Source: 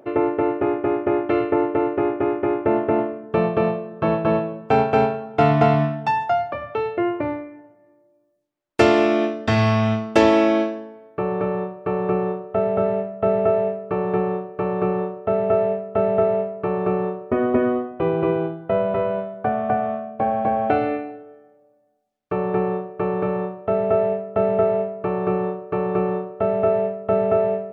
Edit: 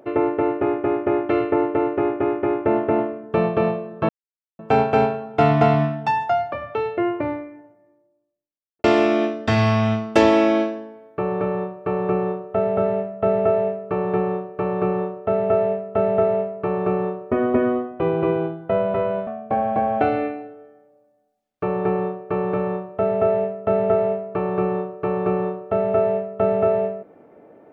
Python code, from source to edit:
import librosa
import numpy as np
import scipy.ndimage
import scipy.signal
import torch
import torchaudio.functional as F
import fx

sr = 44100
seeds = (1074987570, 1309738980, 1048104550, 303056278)

y = fx.studio_fade_out(x, sr, start_s=7.42, length_s=1.42)
y = fx.edit(y, sr, fx.silence(start_s=4.09, length_s=0.5),
    fx.cut(start_s=19.27, length_s=0.69), tone=tone)